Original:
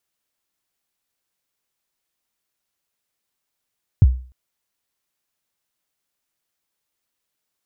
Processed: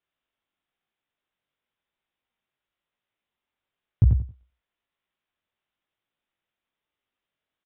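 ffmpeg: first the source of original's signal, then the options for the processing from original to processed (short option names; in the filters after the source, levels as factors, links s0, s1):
-f lavfi -i "aevalsrc='0.631*pow(10,-3*t/0.4)*sin(2*PI*(130*0.035/log(63/130)*(exp(log(63/130)*min(t,0.035)/0.035)-1)+63*max(t-0.035,0)))':d=0.3:s=44100"
-filter_complex "[0:a]flanger=delay=17.5:depth=4.8:speed=1,asplit=2[s0][s1];[s1]aecho=0:1:90|180|270:0.562|0.129|0.0297[s2];[s0][s2]amix=inputs=2:normalize=0,aresample=8000,aresample=44100"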